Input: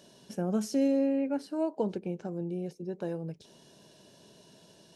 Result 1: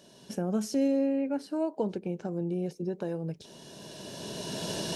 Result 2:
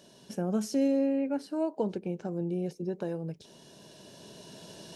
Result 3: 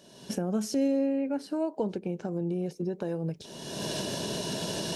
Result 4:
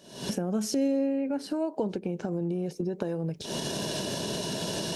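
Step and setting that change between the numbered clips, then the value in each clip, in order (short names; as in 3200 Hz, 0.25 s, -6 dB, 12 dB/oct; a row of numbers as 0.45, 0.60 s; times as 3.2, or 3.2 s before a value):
recorder AGC, rising by: 14, 5.7, 36, 89 dB/s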